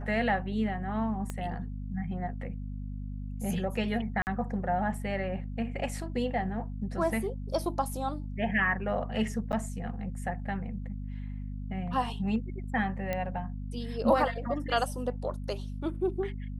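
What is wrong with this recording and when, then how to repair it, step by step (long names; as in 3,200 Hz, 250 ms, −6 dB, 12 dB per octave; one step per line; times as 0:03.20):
mains hum 50 Hz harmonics 5 −37 dBFS
0:01.30: click −21 dBFS
0:04.22–0:04.27: drop-out 49 ms
0:09.52–0:09.53: drop-out 9 ms
0:13.13: click −18 dBFS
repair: click removal
hum removal 50 Hz, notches 5
repair the gap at 0:04.22, 49 ms
repair the gap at 0:09.52, 9 ms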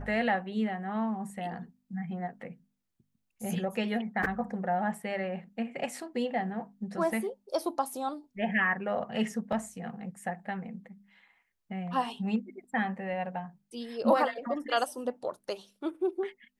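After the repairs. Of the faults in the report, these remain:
0:01.30: click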